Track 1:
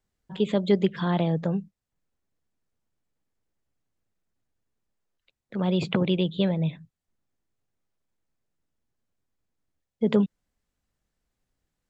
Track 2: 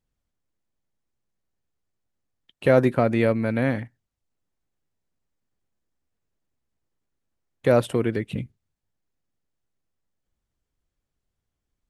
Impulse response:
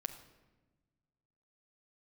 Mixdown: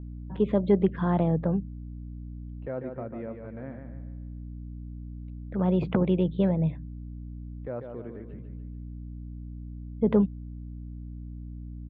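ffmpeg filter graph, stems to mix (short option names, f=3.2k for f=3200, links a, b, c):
-filter_complex "[0:a]aeval=exprs='val(0)+0.0126*(sin(2*PI*60*n/s)+sin(2*PI*2*60*n/s)/2+sin(2*PI*3*60*n/s)/3+sin(2*PI*4*60*n/s)/4+sin(2*PI*5*60*n/s)/5)':c=same,asoftclip=type=tanh:threshold=-8dB,volume=0.5dB[a];[1:a]highshelf=f=4.6k:g=-8.5,volume=-17dB,asplit=3[b][c][d];[c]volume=-6.5dB[e];[d]apad=whole_len=528864[f];[a][f]sidechaincompress=threshold=-44dB:ratio=8:attack=16:release=318[g];[e]aecho=0:1:145|290|435|580|725|870:1|0.43|0.185|0.0795|0.0342|0.0147[h];[g][b][h]amix=inputs=3:normalize=0,lowpass=1.4k"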